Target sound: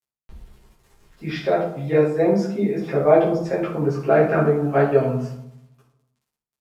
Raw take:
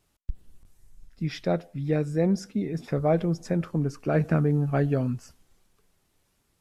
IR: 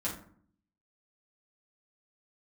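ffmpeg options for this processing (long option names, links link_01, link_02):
-filter_complex "[0:a]acrossover=split=310 4000:gain=0.1 1 0.2[link_01][link_02][link_03];[link_01][link_02][link_03]amix=inputs=3:normalize=0,acrusher=bits=10:mix=0:aa=0.000001[link_04];[1:a]atrim=start_sample=2205,asetrate=29988,aresample=44100[link_05];[link_04][link_05]afir=irnorm=-1:irlink=0,volume=4.5dB"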